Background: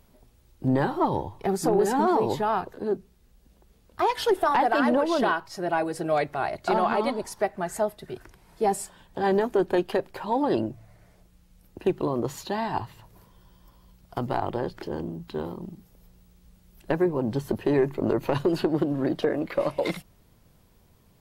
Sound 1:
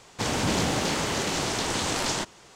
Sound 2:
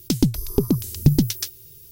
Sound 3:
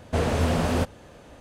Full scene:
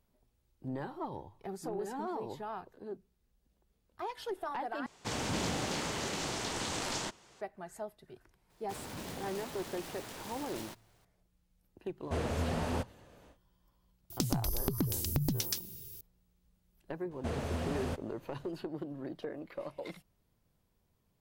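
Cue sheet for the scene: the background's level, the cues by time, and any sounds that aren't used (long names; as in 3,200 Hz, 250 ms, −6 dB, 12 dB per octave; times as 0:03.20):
background −16 dB
0:04.86: overwrite with 1 −9 dB
0:08.50: mix in 1 −18 dB + short delay modulated by noise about 2,300 Hz, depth 0.086 ms
0:11.98: mix in 3 −10.5 dB, fades 0.10 s
0:14.10: mix in 2 −2.5 dB + downward compressor, threshold −25 dBFS
0:17.11: mix in 3 −13 dB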